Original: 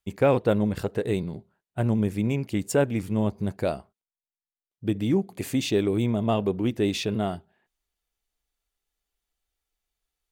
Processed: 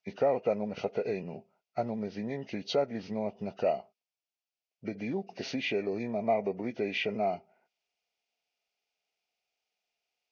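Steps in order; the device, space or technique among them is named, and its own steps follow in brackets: hearing aid with frequency lowering (nonlinear frequency compression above 1100 Hz 1.5:1; compressor 3:1, threshold -27 dBFS, peak gain reduction 9 dB; speaker cabinet 290–5300 Hz, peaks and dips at 320 Hz -10 dB, 680 Hz +6 dB, 1100 Hz -9 dB, 1700 Hz -10 dB, 2600 Hz +4 dB, 3900 Hz -6 dB); gain +2.5 dB

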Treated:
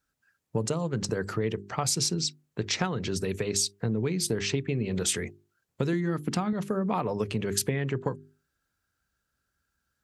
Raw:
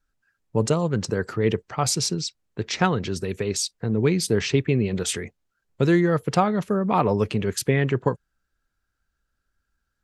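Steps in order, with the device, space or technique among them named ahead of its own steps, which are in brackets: HPF 84 Hz; notches 50/100/150/200/250/300/350/400 Hz; 5.93–6.53 graphic EQ 125/250/500 Hz -5/+12/-9 dB; ASMR close-microphone chain (low shelf 150 Hz +4 dB; compressor 6:1, threshold -25 dBFS, peak gain reduction 12 dB; high shelf 6200 Hz +5.5 dB)

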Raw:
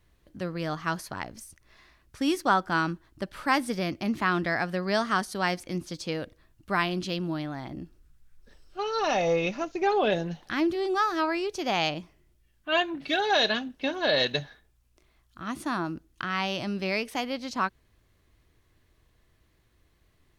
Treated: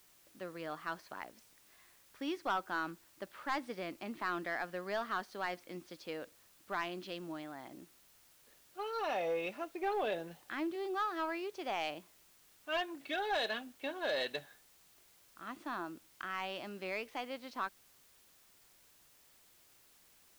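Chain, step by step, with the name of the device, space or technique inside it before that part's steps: tape answering machine (BPF 350–3400 Hz; soft clip -17.5 dBFS, distortion -17 dB; wow and flutter 25 cents; white noise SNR 24 dB); low shelf 110 Hz +5.5 dB; gain -8.5 dB

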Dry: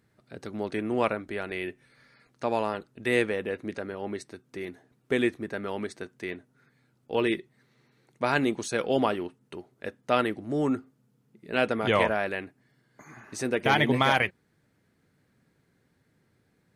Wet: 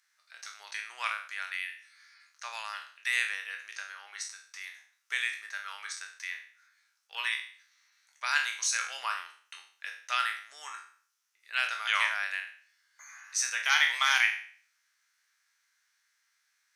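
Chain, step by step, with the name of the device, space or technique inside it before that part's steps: spectral trails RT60 0.49 s; 8.65–9.18 notch 3300 Hz, Q 7.1; headphones lying on a table (HPF 1300 Hz 24 dB/oct; bell 5900 Hz +11 dB 0.46 oct)

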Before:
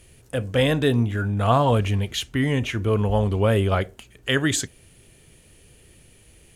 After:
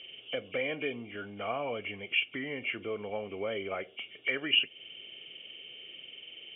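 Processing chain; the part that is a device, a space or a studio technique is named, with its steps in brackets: hearing aid with frequency lowering (nonlinear frequency compression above 2100 Hz 4:1; compressor 3:1, threshold -31 dBFS, peak gain reduction 12.5 dB; speaker cabinet 380–5100 Hz, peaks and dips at 960 Hz -10 dB, 1600 Hz -6 dB, 2800 Hz +8 dB)

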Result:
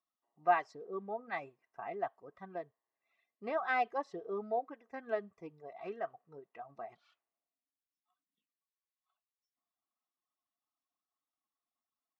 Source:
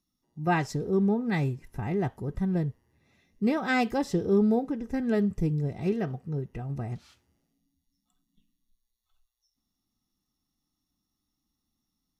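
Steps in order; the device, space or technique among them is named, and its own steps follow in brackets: tin-can telephone (BPF 640–2400 Hz; small resonant body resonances 680/1100 Hz, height 11 dB, ringing for 30 ms); reverb removal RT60 1.5 s; gain -5 dB

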